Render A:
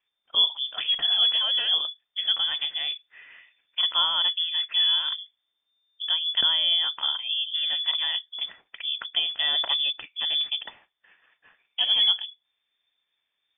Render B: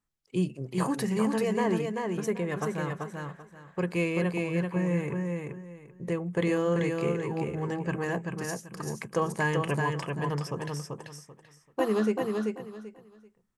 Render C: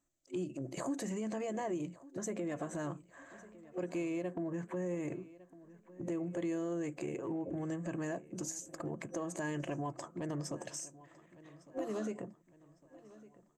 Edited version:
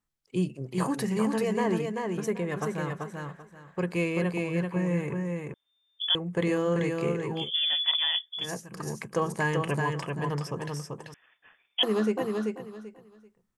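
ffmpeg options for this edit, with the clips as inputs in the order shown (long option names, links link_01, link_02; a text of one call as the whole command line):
ffmpeg -i take0.wav -i take1.wav -filter_complex "[0:a]asplit=3[link_01][link_02][link_03];[1:a]asplit=4[link_04][link_05][link_06][link_07];[link_04]atrim=end=5.542[link_08];[link_01]atrim=start=5.538:end=6.152[link_09];[link_05]atrim=start=6.148:end=7.51[link_10];[link_02]atrim=start=7.35:end=8.53[link_11];[link_06]atrim=start=8.37:end=11.142[link_12];[link_03]atrim=start=11.138:end=11.832[link_13];[link_07]atrim=start=11.828[link_14];[link_08][link_09]acrossfade=duration=0.004:curve1=hsin:curve2=hsin[link_15];[link_15][link_10]acrossfade=duration=0.004:curve1=hsin:curve2=hsin[link_16];[link_16][link_11]acrossfade=duration=0.16:curve1=tri:curve2=tri[link_17];[link_17][link_12]acrossfade=duration=0.16:curve1=tri:curve2=tri[link_18];[link_18][link_13]acrossfade=duration=0.004:curve1=hsin:curve2=hsin[link_19];[link_19][link_14]acrossfade=duration=0.004:curve1=hsin:curve2=hsin" out.wav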